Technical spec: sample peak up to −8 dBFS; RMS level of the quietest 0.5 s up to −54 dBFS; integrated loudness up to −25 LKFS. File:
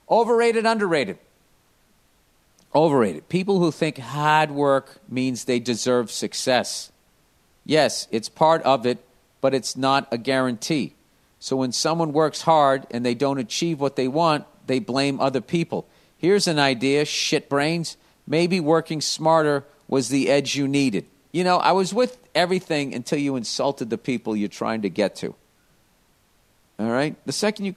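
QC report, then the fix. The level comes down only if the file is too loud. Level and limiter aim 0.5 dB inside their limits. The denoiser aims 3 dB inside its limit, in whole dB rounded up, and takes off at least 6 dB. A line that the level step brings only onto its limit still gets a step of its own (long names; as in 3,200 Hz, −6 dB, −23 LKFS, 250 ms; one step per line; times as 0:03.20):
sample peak −2.0 dBFS: out of spec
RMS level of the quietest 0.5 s −61 dBFS: in spec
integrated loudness −22.0 LKFS: out of spec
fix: level −3.5 dB
brickwall limiter −8.5 dBFS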